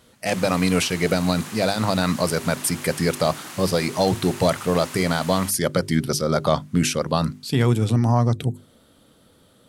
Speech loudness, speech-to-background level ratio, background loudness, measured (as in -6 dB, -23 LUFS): -22.0 LUFS, 14.0 dB, -36.0 LUFS